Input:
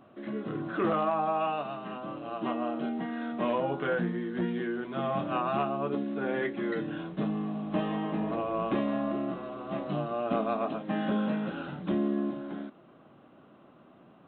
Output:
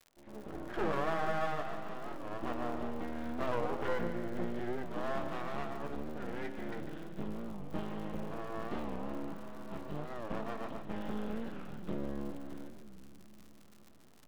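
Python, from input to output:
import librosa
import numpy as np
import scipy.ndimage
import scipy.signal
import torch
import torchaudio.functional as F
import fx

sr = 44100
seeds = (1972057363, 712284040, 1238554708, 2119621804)

y = fx.fade_in_head(x, sr, length_s=0.75)
y = fx.peak_eq(y, sr, hz=fx.steps((0.0, 500.0), (5.29, 66.0)), db=7.5, octaves=2.8)
y = fx.dmg_crackle(y, sr, seeds[0], per_s=200.0, level_db=-37.0)
y = np.maximum(y, 0.0)
y = fx.echo_split(y, sr, split_hz=310.0, low_ms=433, high_ms=147, feedback_pct=52, wet_db=-9.5)
y = fx.record_warp(y, sr, rpm=45.0, depth_cents=160.0)
y = y * 10.0 ** (-8.0 / 20.0)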